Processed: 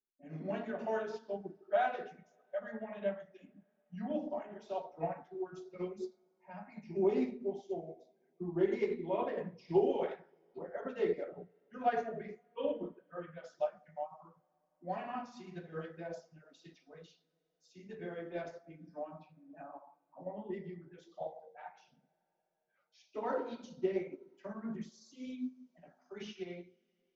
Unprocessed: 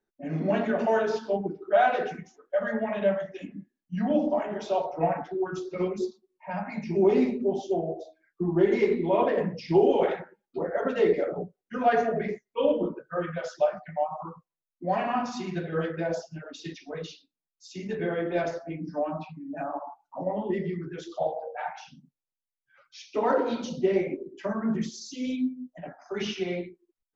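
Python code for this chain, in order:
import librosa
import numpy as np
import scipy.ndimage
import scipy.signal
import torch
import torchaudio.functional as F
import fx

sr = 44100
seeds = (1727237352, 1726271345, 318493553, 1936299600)

y = fx.wow_flutter(x, sr, seeds[0], rate_hz=2.1, depth_cents=17.0)
y = fx.rev_double_slope(y, sr, seeds[1], early_s=0.48, late_s=4.9, knee_db=-18, drr_db=15.0)
y = fx.upward_expand(y, sr, threshold_db=-38.0, expansion=1.5)
y = y * 10.0 ** (-8.0 / 20.0)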